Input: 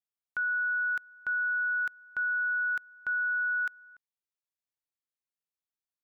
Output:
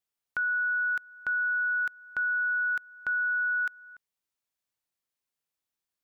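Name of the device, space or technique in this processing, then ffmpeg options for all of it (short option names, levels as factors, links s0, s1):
parallel compression: -filter_complex "[0:a]asplit=2[s0][s1];[s1]acompressor=threshold=0.00708:ratio=6,volume=0.891[s2];[s0][s2]amix=inputs=2:normalize=0"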